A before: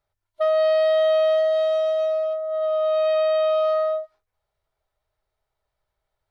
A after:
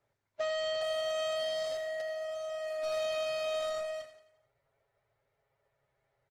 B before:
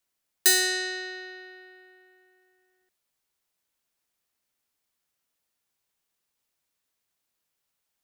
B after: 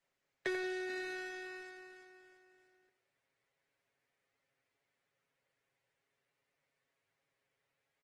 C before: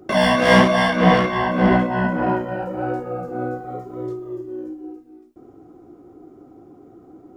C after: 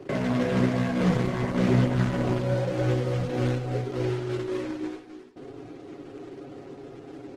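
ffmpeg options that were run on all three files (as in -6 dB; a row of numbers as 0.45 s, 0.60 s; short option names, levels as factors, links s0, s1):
-filter_complex "[0:a]asoftclip=type=tanh:threshold=0.158,acrossover=split=3500[s0][s1];[s1]acompressor=threshold=0.0112:ratio=4:attack=1:release=60[s2];[s0][s2]amix=inputs=2:normalize=0,equalizer=f=125:t=o:w=1:g=9,equalizer=f=500:t=o:w=1:g=11,equalizer=f=2000:t=o:w=1:g=11,asoftclip=type=hard:threshold=0.376,acrossover=split=390[s3][s4];[s4]acompressor=threshold=0.0251:ratio=4[s5];[s3][s5]amix=inputs=2:normalize=0,highpass=46,acrusher=bits=2:mode=log:mix=0:aa=0.000001,lowpass=7600,highshelf=f=3600:g=-9.5,aecho=1:1:7.3:0.54,asplit=2[s6][s7];[s7]aecho=0:1:88|176|264|352|440:0.282|0.13|0.0596|0.0274|0.0126[s8];[s6][s8]amix=inputs=2:normalize=0,volume=0.596" -ar 48000 -c:a libopus -b:a 16k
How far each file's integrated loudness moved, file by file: -13.5 LU, -17.5 LU, -7.0 LU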